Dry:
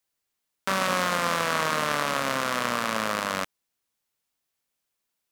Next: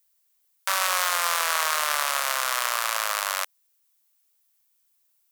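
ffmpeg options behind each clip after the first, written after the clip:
-af "highpass=f=670:w=0.5412,highpass=f=670:w=1.3066,aemphasis=mode=production:type=50kf"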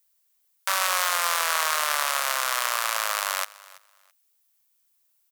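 -af "aecho=1:1:332|664:0.0891|0.0187"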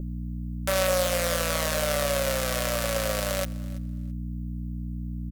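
-af "aeval=exprs='val(0)+0.0141*(sin(2*PI*60*n/s)+sin(2*PI*2*60*n/s)/2+sin(2*PI*3*60*n/s)/3+sin(2*PI*4*60*n/s)/4+sin(2*PI*5*60*n/s)/5)':c=same,lowshelf=f=710:t=q:w=3:g=10,aecho=1:1:5.3:0.46,volume=-4dB"

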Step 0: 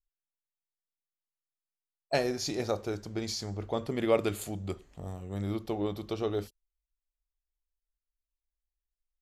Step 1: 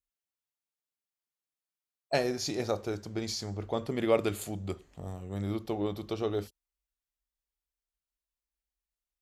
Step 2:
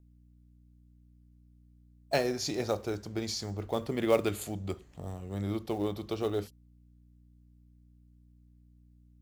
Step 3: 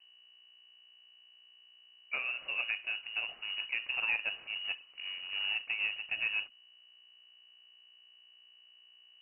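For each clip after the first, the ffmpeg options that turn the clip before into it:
-af "highpass=45"
-filter_complex "[0:a]aeval=exprs='val(0)+0.00126*(sin(2*PI*60*n/s)+sin(2*PI*2*60*n/s)/2+sin(2*PI*3*60*n/s)/3+sin(2*PI*4*60*n/s)/4+sin(2*PI*5*60*n/s)/5)':c=same,acrossover=split=520|3700[a][b][c];[b]acrusher=bits=4:mode=log:mix=0:aa=0.000001[d];[a][d][c]amix=inputs=3:normalize=0"
-af "alimiter=limit=-21dB:level=0:latency=1:release=300,acrusher=bits=3:mode=log:mix=0:aa=0.000001,lowpass=f=2.6k:t=q:w=0.5098,lowpass=f=2.6k:t=q:w=0.6013,lowpass=f=2.6k:t=q:w=0.9,lowpass=f=2.6k:t=q:w=2.563,afreqshift=-3000,volume=-2dB"

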